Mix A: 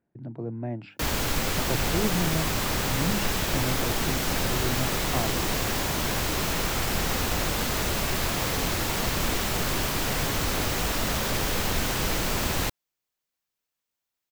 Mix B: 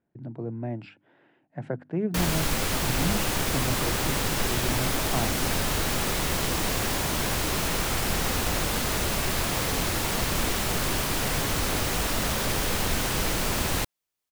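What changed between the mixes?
background: entry +1.15 s
master: add parametric band 9,600 Hz +6.5 dB 0.22 octaves

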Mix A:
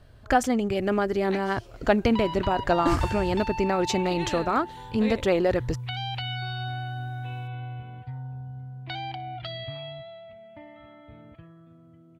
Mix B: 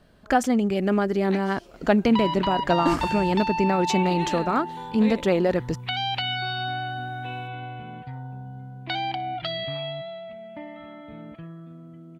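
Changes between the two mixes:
second sound +6.5 dB
master: add low shelf with overshoot 140 Hz −7 dB, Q 3

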